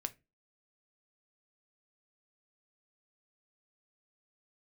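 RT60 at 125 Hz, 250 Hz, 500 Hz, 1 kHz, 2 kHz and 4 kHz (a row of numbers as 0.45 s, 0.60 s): 0.30 s, 0.35 s, 0.30 s, 0.20 s, 0.25 s, 0.15 s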